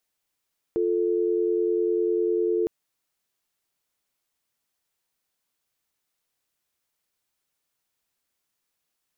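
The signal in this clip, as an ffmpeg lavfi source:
-f lavfi -i "aevalsrc='0.0668*(sin(2*PI*350*t)+sin(2*PI*440*t))':d=1.91:s=44100"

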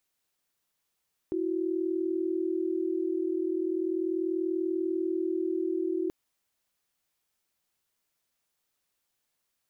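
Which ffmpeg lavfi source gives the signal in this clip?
-f lavfi -i "aevalsrc='0.0335*(sin(2*PI*329.63*t)+sin(2*PI*369.99*t))':d=4.78:s=44100"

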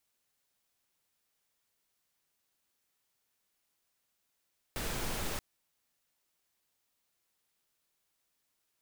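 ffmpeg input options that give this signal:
-f lavfi -i "anoisesrc=c=pink:a=0.0813:d=0.63:r=44100:seed=1"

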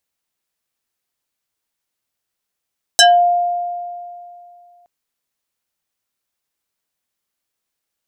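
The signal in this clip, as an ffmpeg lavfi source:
-f lavfi -i "aevalsrc='0.596*pow(10,-3*t/2.54)*sin(2*PI*703*t+4.1*pow(10,-3*t/0.23)*sin(2*PI*3.31*703*t))':d=1.87:s=44100"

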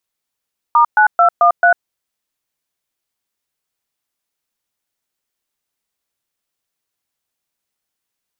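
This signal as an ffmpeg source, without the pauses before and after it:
-f lavfi -i "aevalsrc='0.335*clip(min(mod(t,0.22),0.098-mod(t,0.22))/0.002,0,1)*(eq(floor(t/0.22),0)*(sin(2*PI*941*mod(t,0.22))+sin(2*PI*1209*mod(t,0.22)))+eq(floor(t/0.22),1)*(sin(2*PI*852*mod(t,0.22))+sin(2*PI*1477*mod(t,0.22)))+eq(floor(t/0.22),2)*(sin(2*PI*697*mod(t,0.22))+sin(2*PI*1336*mod(t,0.22)))+eq(floor(t/0.22),3)*(sin(2*PI*697*mod(t,0.22))+sin(2*PI*1209*mod(t,0.22)))+eq(floor(t/0.22),4)*(sin(2*PI*697*mod(t,0.22))+sin(2*PI*1477*mod(t,0.22))))':d=1.1:s=44100"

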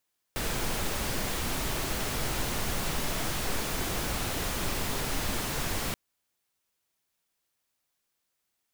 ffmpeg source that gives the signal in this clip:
-f lavfi -i "anoisesrc=c=pink:a=0.153:d=5.58:r=44100:seed=1"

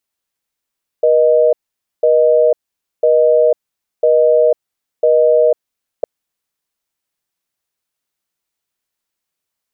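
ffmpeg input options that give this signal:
-f lavfi -i "aevalsrc='0.299*(sin(2*PI*480*t)+sin(2*PI*620*t))*clip(min(mod(t,1),0.5-mod(t,1))/0.005,0,1)':d=5.01:s=44100"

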